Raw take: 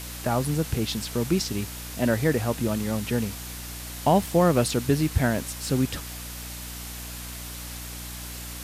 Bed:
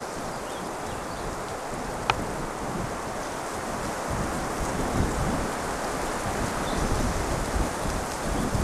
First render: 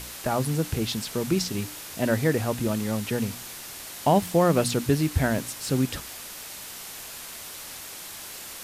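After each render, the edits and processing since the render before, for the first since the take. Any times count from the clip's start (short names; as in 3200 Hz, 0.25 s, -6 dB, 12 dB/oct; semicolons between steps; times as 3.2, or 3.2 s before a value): de-hum 60 Hz, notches 5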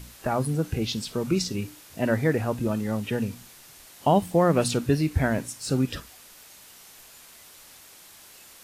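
noise print and reduce 10 dB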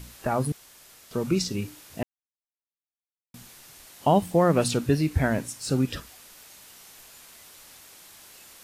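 0.52–1.11 room tone; 2.03–3.34 mute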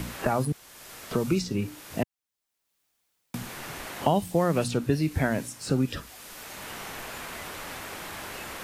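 three-band squash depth 70%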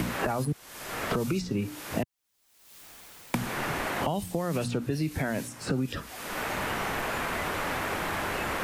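limiter -18 dBFS, peak gain reduction 9.5 dB; three-band squash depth 100%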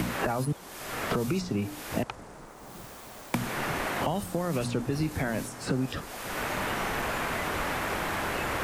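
add bed -15.5 dB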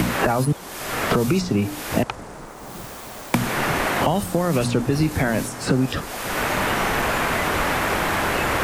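gain +9 dB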